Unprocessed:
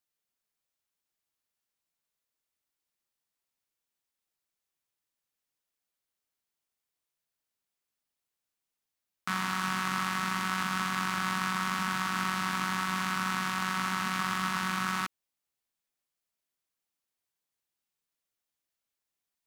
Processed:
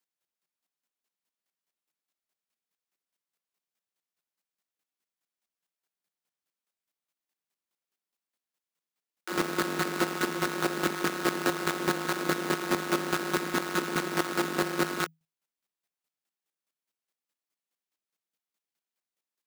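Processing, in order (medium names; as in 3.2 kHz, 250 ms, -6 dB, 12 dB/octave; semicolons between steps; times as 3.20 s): square wave that keeps the level; frequency shift +160 Hz; square tremolo 4.8 Hz, depth 65%, duty 20%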